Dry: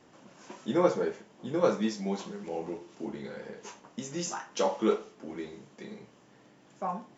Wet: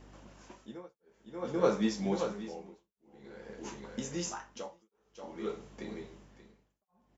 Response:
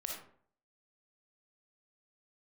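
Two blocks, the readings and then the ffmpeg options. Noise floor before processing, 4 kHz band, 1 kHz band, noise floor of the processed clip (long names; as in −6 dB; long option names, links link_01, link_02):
−59 dBFS, −3.5 dB, −7.5 dB, −84 dBFS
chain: -af "aecho=1:1:582:0.422,aeval=exprs='val(0)+0.00178*(sin(2*PI*50*n/s)+sin(2*PI*2*50*n/s)/2+sin(2*PI*3*50*n/s)/3+sin(2*PI*4*50*n/s)/4+sin(2*PI*5*50*n/s)/5)':channel_layout=same,tremolo=f=0.51:d=1"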